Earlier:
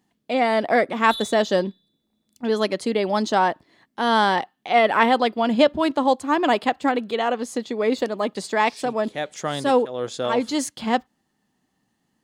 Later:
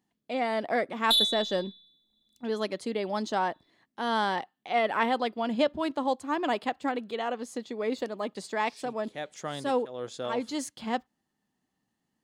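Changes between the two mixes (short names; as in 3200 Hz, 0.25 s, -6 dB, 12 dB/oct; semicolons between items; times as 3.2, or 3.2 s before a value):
speech -9.0 dB; background +10.0 dB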